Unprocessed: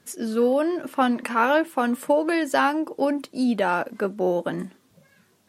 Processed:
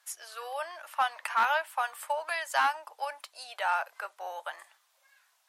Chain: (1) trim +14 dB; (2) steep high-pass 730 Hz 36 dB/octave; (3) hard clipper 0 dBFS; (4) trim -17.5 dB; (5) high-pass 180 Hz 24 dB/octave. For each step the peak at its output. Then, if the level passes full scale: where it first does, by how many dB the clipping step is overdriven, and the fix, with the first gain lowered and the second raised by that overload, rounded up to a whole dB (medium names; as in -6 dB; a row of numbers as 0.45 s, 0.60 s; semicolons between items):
+7.0 dBFS, +5.0 dBFS, 0.0 dBFS, -17.5 dBFS, -14.5 dBFS; step 1, 5.0 dB; step 1 +9 dB, step 4 -12.5 dB